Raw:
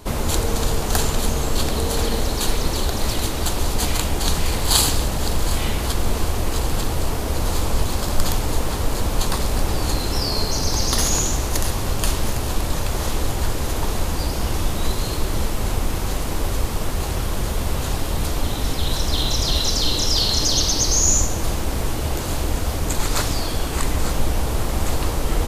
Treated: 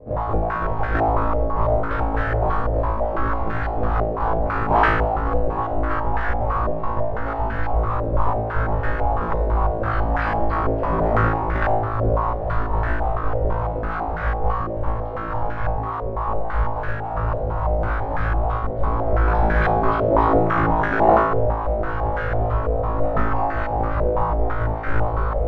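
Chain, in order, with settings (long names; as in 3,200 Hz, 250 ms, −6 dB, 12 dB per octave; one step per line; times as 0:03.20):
time-frequency cells dropped at random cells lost 35%
Chebyshev band-stop filter 160–460 Hz, order 4
sample-and-hold swept by an LFO 26×, swing 160% 3.5 Hz
flutter between parallel walls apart 3.1 metres, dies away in 0.82 s
on a send at −13 dB: convolution reverb RT60 1.8 s, pre-delay 3 ms
on the sum: low-pass on a step sequencer 6 Hz 570–1,600 Hz
level −3.5 dB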